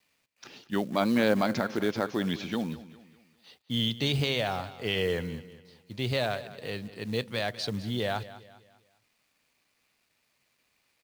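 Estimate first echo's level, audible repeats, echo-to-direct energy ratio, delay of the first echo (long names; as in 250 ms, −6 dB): −16.0 dB, 3, −15.5 dB, 201 ms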